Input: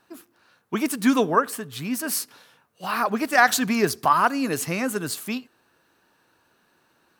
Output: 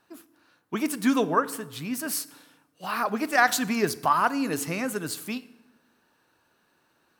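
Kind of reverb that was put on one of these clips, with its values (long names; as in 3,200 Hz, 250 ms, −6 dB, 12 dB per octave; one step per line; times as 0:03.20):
feedback delay network reverb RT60 1 s, low-frequency decay 1.35×, high-frequency decay 0.8×, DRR 16 dB
level −3.5 dB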